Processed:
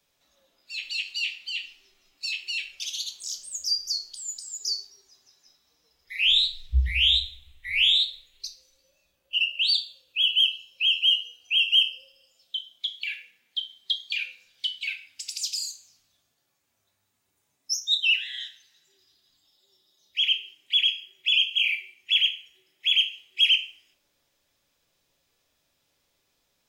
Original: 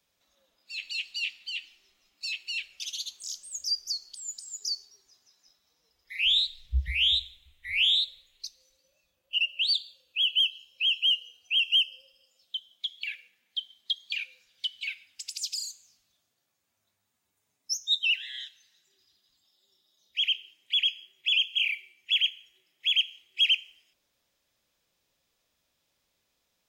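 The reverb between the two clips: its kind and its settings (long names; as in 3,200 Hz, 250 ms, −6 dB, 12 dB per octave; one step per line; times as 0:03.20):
rectangular room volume 41 cubic metres, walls mixed, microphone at 0.36 metres
level +2.5 dB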